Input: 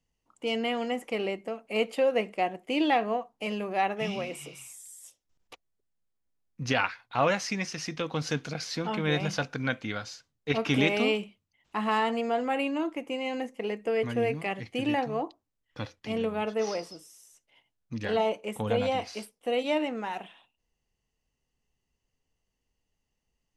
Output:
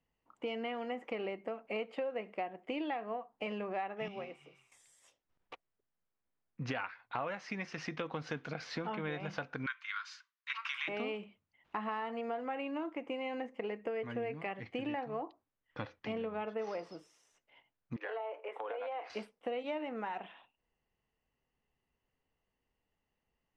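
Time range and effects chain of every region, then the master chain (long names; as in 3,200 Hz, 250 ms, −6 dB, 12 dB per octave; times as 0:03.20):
0:04.08–0:04.72: tuned comb filter 390 Hz, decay 0.62 s + expander for the loud parts, over −50 dBFS
0:09.66–0:10.88: Butterworth high-pass 1,000 Hz 72 dB per octave + high-shelf EQ 6,600 Hz +8 dB
0:17.96–0:19.10: Butterworth high-pass 290 Hz 48 dB per octave + three-way crossover with the lows and the highs turned down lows −22 dB, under 380 Hz, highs −15 dB, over 2,800 Hz + downward compressor 4 to 1, threshold −37 dBFS
whole clip: low-pass filter 1,800 Hz 12 dB per octave; spectral tilt +2 dB per octave; downward compressor 6 to 1, threshold −38 dBFS; level +2.5 dB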